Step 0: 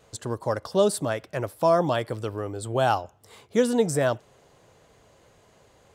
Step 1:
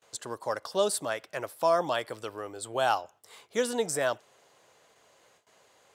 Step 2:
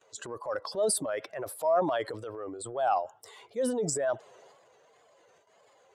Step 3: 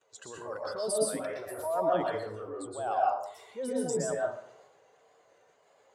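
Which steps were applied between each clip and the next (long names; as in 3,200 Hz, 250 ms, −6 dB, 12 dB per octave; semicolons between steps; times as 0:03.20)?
noise gate with hold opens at −48 dBFS; high-pass filter 870 Hz 6 dB per octave
expanding power law on the bin magnitudes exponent 1.7; transient designer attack −5 dB, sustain +7 dB; tape wow and flutter 88 cents
dense smooth reverb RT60 0.6 s, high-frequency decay 0.55×, pre-delay 105 ms, DRR −4 dB; level −7 dB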